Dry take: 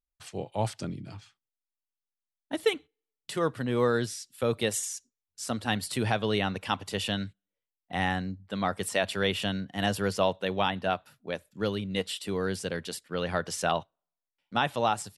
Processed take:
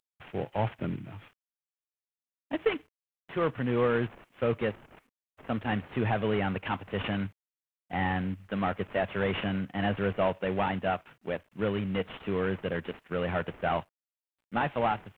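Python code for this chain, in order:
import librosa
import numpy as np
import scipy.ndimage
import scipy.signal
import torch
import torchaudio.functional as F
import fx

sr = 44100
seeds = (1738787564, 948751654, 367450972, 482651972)

p1 = fx.cvsd(x, sr, bps=16000)
p2 = fx.level_steps(p1, sr, step_db=20)
p3 = p1 + (p2 * librosa.db_to_amplitude(2.0))
p4 = fx.quant_dither(p3, sr, seeds[0], bits=12, dither='none')
y = p4 * librosa.db_to_amplitude(-1.5)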